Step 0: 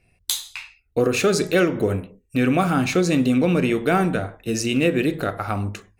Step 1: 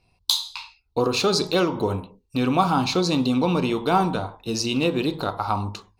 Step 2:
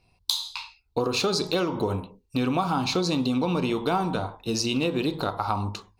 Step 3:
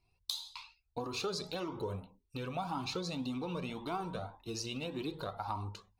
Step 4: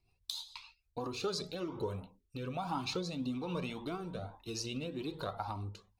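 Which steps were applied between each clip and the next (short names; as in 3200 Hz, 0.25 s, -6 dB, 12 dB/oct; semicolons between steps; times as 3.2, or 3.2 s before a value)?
EQ curve 660 Hz 0 dB, 940 Hz +15 dB, 1800 Hz -10 dB, 4300 Hz +12 dB, 7400 Hz -3 dB; gain -3 dB
compressor, threshold -21 dBFS, peak gain reduction 7.5 dB
cascading flanger rising 1.8 Hz; gain -8 dB
rotary speaker horn 7 Hz, later 1.2 Hz, at 0.6; gain +2 dB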